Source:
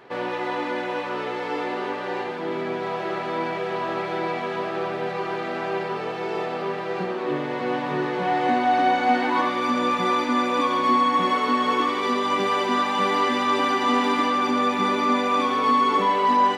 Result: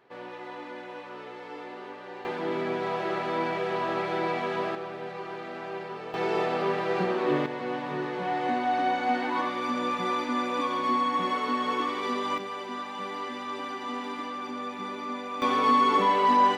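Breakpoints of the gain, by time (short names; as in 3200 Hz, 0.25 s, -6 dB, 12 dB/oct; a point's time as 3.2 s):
-13 dB
from 2.25 s -2 dB
from 4.75 s -9.5 dB
from 6.14 s +0.5 dB
from 7.46 s -6.5 dB
from 12.38 s -13.5 dB
from 15.42 s -2 dB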